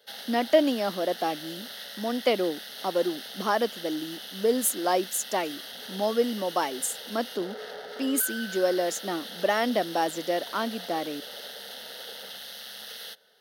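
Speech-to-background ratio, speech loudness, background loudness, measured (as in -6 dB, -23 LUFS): 10.5 dB, -28.0 LUFS, -38.5 LUFS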